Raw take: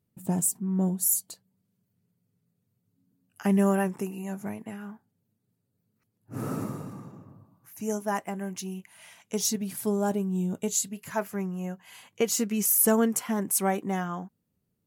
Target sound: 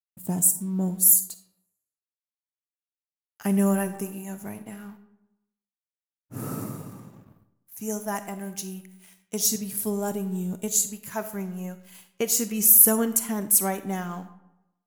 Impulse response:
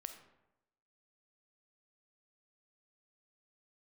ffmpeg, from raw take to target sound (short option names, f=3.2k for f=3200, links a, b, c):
-filter_complex "[0:a]aeval=exprs='sgn(val(0))*max(abs(val(0))-0.00168,0)':c=same,agate=range=-33dB:threshold=-51dB:ratio=3:detection=peak,asplit=2[a][b];[b]aemphasis=mode=production:type=75kf[c];[1:a]atrim=start_sample=2205,lowshelf=f=190:g=6.5[d];[c][d]afir=irnorm=-1:irlink=0,volume=6dB[e];[a][e]amix=inputs=2:normalize=0,volume=-9dB"